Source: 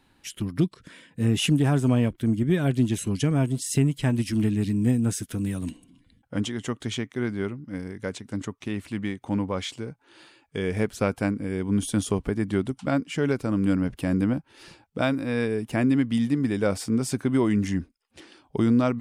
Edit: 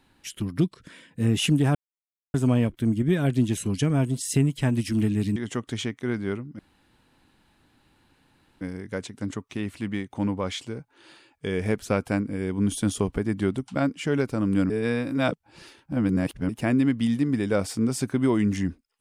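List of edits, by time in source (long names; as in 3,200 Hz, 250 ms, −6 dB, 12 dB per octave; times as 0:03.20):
0:01.75: splice in silence 0.59 s
0:04.77–0:06.49: remove
0:07.72: splice in room tone 2.02 s
0:13.81–0:15.60: reverse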